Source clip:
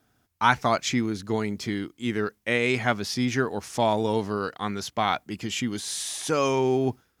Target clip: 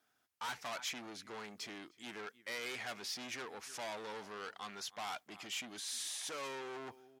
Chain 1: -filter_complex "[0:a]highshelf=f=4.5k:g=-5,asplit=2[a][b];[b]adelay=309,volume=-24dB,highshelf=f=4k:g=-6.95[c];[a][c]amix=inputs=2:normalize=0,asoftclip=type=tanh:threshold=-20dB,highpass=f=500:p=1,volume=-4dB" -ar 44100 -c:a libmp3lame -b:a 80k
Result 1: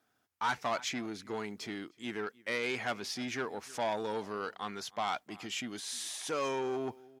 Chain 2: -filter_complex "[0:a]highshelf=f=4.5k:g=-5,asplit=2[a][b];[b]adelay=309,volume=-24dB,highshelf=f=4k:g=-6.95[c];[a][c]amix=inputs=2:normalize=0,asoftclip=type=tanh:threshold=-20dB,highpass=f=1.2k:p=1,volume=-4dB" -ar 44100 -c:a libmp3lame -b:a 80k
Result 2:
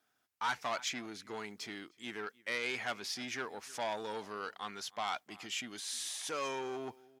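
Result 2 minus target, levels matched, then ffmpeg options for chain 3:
soft clip: distortion -6 dB
-filter_complex "[0:a]highshelf=f=4.5k:g=-5,asplit=2[a][b];[b]adelay=309,volume=-24dB,highshelf=f=4k:g=-6.95[c];[a][c]amix=inputs=2:normalize=0,asoftclip=type=tanh:threshold=-30dB,highpass=f=1.2k:p=1,volume=-4dB" -ar 44100 -c:a libmp3lame -b:a 80k

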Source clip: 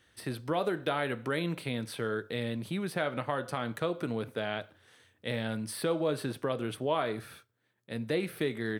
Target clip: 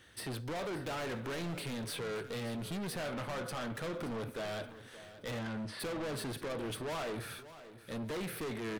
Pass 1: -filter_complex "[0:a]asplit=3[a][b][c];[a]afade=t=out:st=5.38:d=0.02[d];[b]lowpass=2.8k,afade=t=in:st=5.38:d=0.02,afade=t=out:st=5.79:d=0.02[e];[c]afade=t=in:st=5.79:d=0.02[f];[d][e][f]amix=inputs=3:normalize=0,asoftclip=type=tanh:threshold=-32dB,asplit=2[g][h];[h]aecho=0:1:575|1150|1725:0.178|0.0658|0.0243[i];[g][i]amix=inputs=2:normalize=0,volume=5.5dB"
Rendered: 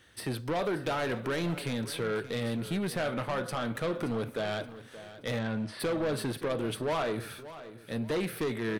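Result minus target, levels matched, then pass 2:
soft clip: distortion -5 dB
-filter_complex "[0:a]asplit=3[a][b][c];[a]afade=t=out:st=5.38:d=0.02[d];[b]lowpass=2.8k,afade=t=in:st=5.38:d=0.02,afade=t=out:st=5.79:d=0.02[e];[c]afade=t=in:st=5.79:d=0.02[f];[d][e][f]amix=inputs=3:normalize=0,asoftclip=type=tanh:threshold=-42dB,asplit=2[g][h];[h]aecho=0:1:575|1150|1725:0.178|0.0658|0.0243[i];[g][i]amix=inputs=2:normalize=0,volume=5.5dB"

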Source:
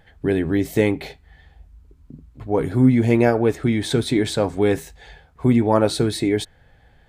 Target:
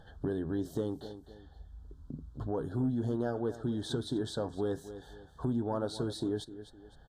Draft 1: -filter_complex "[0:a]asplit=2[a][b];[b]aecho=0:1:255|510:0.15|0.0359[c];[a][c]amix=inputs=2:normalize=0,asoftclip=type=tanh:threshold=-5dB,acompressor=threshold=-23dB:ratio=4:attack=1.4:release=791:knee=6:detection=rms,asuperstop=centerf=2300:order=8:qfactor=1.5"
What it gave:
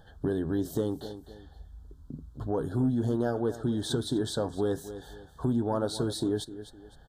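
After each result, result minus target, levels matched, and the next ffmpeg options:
compressor: peak gain reduction -4.5 dB; 8000 Hz band +4.5 dB
-filter_complex "[0:a]asplit=2[a][b];[b]aecho=0:1:255|510:0.15|0.0359[c];[a][c]amix=inputs=2:normalize=0,asoftclip=type=tanh:threshold=-5dB,acompressor=threshold=-29dB:ratio=4:attack=1.4:release=791:knee=6:detection=rms,asuperstop=centerf=2300:order=8:qfactor=1.5"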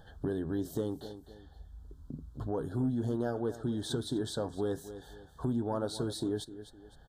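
8000 Hz band +4.5 dB
-filter_complex "[0:a]asplit=2[a][b];[b]aecho=0:1:255|510:0.15|0.0359[c];[a][c]amix=inputs=2:normalize=0,asoftclip=type=tanh:threshold=-5dB,acompressor=threshold=-29dB:ratio=4:attack=1.4:release=791:knee=6:detection=rms,asuperstop=centerf=2300:order=8:qfactor=1.5,highshelf=f=9.3k:g=-11"

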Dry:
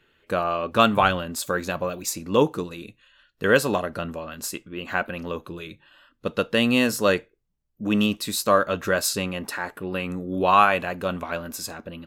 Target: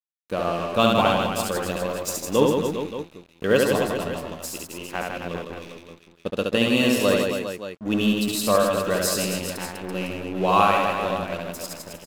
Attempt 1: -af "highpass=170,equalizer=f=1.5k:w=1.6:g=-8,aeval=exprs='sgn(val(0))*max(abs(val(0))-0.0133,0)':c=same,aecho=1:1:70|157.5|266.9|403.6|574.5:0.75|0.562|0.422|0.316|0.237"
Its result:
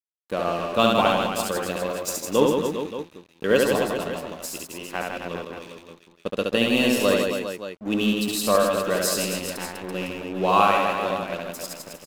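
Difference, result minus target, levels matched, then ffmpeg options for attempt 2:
125 Hz band -3.0 dB
-af "highpass=59,equalizer=f=1.5k:w=1.6:g=-8,aeval=exprs='sgn(val(0))*max(abs(val(0))-0.0133,0)':c=same,aecho=1:1:70|157.5|266.9|403.6|574.5:0.75|0.562|0.422|0.316|0.237"

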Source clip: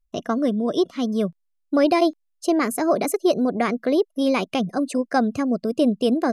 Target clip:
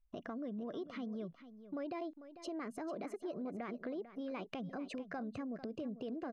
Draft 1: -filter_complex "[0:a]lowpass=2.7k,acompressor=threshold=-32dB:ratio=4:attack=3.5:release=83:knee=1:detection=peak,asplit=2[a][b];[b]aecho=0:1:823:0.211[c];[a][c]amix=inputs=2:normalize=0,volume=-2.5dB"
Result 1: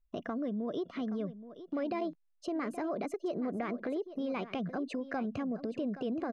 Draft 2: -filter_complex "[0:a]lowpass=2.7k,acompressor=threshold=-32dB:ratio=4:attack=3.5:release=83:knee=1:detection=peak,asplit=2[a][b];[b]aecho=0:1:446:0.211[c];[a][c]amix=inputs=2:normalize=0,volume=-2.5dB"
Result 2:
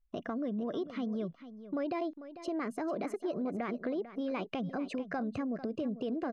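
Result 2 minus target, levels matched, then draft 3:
compressor: peak gain reduction -7 dB
-filter_complex "[0:a]lowpass=2.7k,acompressor=threshold=-41.5dB:ratio=4:attack=3.5:release=83:knee=1:detection=peak,asplit=2[a][b];[b]aecho=0:1:446:0.211[c];[a][c]amix=inputs=2:normalize=0,volume=-2.5dB"

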